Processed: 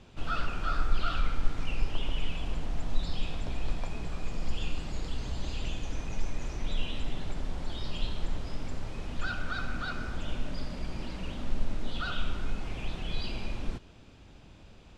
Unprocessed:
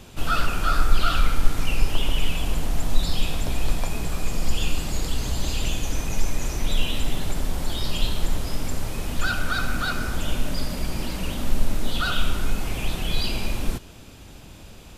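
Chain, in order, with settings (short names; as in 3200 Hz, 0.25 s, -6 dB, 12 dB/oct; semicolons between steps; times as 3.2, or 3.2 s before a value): air absorption 110 m; gain -8.5 dB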